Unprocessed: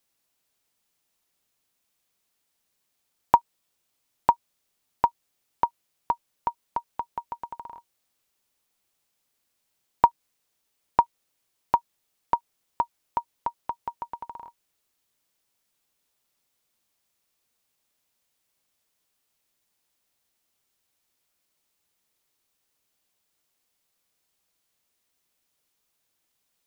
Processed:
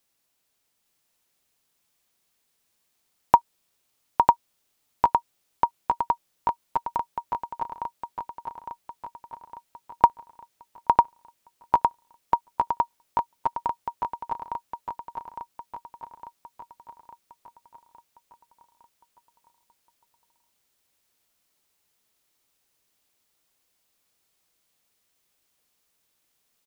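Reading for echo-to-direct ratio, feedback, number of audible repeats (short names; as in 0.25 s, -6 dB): -3.0 dB, 54%, 6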